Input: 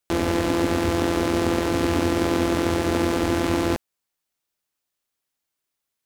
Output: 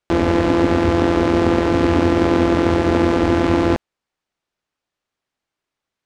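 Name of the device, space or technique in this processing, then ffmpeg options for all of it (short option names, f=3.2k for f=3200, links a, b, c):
through cloth: -af "lowpass=7.2k,highshelf=f=3.6k:g=-11,volume=6.5dB"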